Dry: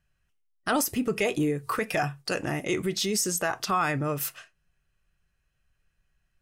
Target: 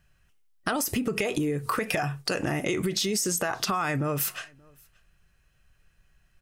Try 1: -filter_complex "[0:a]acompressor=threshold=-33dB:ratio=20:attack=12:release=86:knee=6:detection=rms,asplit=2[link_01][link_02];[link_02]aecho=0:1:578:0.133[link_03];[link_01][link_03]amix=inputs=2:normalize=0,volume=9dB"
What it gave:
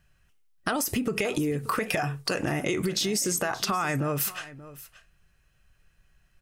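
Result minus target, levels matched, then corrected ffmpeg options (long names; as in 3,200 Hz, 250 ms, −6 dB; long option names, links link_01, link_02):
echo-to-direct +11.5 dB
-filter_complex "[0:a]acompressor=threshold=-33dB:ratio=20:attack=12:release=86:knee=6:detection=rms,asplit=2[link_01][link_02];[link_02]aecho=0:1:578:0.0355[link_03];[link_01][link_03]amix=inputs=2:normalize=0,volume=9dB"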